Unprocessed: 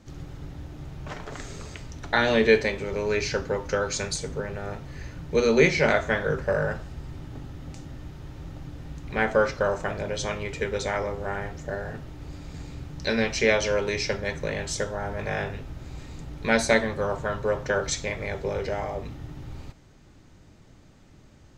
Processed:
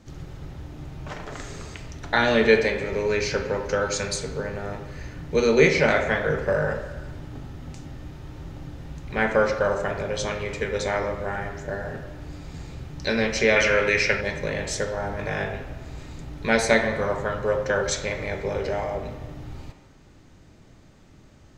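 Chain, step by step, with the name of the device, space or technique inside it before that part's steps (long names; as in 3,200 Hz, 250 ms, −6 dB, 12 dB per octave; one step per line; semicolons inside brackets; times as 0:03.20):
filtered reverb send (on a send: high-pass filter 230 Hz + low-pass filter 3,200 Hz 12 dB per octave + convolution reverb RT60 1.3 s, pre-delay 25 ms, DRR 6 dB)
0:13.56–0:14.21: on the sum: flat-topped bell 1,900 Hz +9 dB 1.3 octaves
level +1 dB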